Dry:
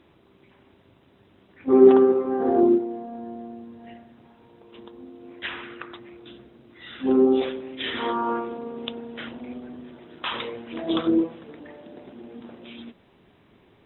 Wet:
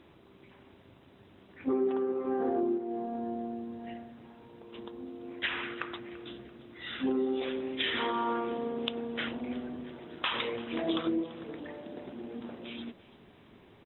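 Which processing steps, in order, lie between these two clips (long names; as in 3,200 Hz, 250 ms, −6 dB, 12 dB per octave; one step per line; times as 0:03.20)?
dynamic equaliser 2,400 Hz, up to +4 dB, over −43 dBFS, Q 1
downward compressor 6 to 1, threshold −28 dBFS, peak gain reduction 18.5 dB
on a send: repeating echo 338 ms, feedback 45%, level −19 dB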